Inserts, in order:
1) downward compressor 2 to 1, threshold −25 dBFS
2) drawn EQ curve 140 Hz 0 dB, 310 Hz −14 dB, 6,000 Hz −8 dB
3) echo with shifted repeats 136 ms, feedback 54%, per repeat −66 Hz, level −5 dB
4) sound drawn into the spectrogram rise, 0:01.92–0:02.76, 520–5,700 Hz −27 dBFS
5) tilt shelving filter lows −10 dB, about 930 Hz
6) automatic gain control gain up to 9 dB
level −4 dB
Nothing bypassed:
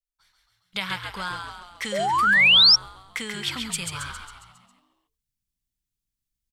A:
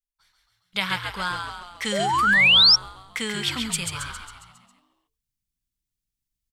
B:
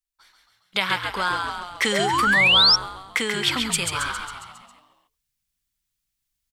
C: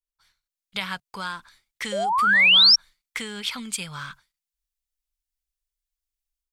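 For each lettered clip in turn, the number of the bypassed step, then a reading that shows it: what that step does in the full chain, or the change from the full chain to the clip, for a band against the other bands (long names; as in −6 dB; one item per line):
1, 250 Hz band +3.0 dB
2, 4 kHz band −5.0 dB
3, 125 Hz band −3.5 dB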